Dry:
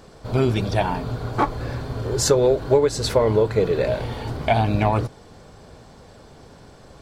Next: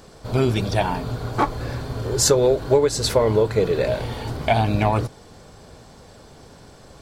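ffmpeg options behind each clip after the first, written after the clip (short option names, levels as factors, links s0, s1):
-af "highshelf=f=4700:g=6"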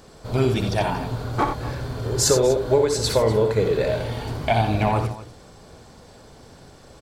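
-af "aecho=1:1:61|86|244:0.376|0.355|0.158,volume=0.794"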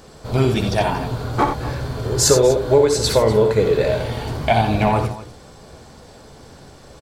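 -filter_complex "[0:a]asplit=2[s0][s1];[s1]adelay=14,volume=0.266[s2];[s0][s2]amix=inputs=2:normalize=0,volume=1.5"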